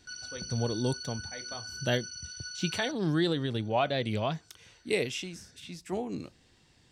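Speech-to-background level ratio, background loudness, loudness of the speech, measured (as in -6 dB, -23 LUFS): 8.0 dB, -40.0 LUFS, -32.0 LUFS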